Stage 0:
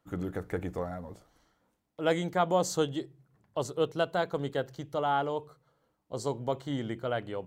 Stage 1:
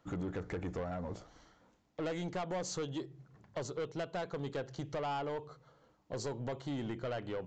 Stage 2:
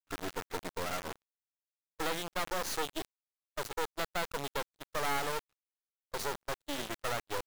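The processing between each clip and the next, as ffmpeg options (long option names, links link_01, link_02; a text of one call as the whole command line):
ffmpeg -i in.wav -af "acompressor=threshold=-40dB:ratio=3,aresample=16000,asoftclip=type=tanh:threshold=-39dB,aresample=44100,volume=6.5dB" out.wav
ffmpeg -i in.wav -af "highpass=320,equalizer=frequency=650:width_type=q:width=4:gain=-3,equalizer=frequency=1300:width_type=q:width=4:gain=9,equalizer=frequency=3600:width_type=q:width=4:gain=7,lowpass=frequency=6800:width=0.5412,lowpass=frequency=6800:width=1.3066,acrusher=bits=4:dc=4:mix=0:aa=0.000001,agate=range=-36dB:threshold=-44dB:ratio=16:detection=peak,volume=7dB" out.wav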